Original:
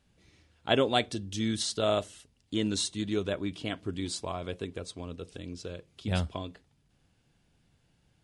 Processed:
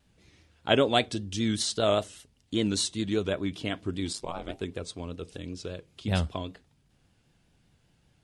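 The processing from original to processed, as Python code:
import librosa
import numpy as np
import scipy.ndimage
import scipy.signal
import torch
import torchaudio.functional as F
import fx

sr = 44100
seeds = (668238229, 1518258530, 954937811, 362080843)

y = fx.ring_mod(x, sr, carrier_hz=fx.line((4.12, 42.0), (4.6, 230.0)), at=(4.12, 4.6), fade=0.02)
y = fx.vibrato(y, sr, rate_hz=5.1, depth_cents=72.0)
y = F.gain(torch.from_numpy(y), 2.5).numpy()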